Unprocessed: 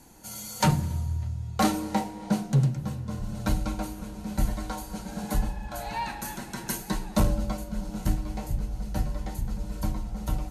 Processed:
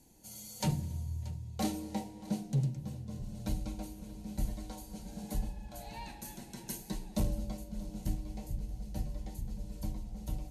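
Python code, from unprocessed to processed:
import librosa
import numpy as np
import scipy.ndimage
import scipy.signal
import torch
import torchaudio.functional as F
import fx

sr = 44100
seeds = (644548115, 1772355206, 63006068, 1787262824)

p1 = fx.peak_eq(x, sr, hz=1300.0, db=-14.0, octaves=1.0)
p2 = p1 + fx.echo_single(p1, sr, ms=630, db=-19.0, dry=0)
y = p2 * librosa.db_to_amplitude(-8.5)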